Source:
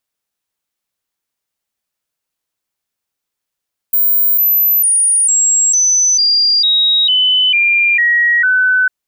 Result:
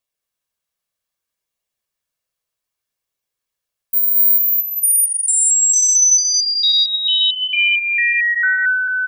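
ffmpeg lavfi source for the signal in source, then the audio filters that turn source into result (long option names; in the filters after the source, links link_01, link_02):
-f lavfi -i "aevalsrc='0.376*clip(min(mod(t,0.45),0.45-mod(t,0.45))/0.005,0,1)*sin(2*PI*15200*pow(2,-floor(t/0.45)/3)*mod(t,0.45))':duration=4.95:sample_rate=44100"
-af "aecho=1:1:1.8:0.34,flanger=delay=0.3:depth=1.3:regen=-66:speed=0.64:shape=sinusoidal,aecho=1:1:227:0.668"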